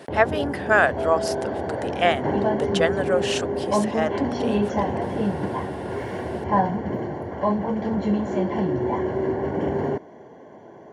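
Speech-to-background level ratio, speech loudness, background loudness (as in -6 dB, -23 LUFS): 1.0 dB, -24.5 LUFS, -25.5 LUFS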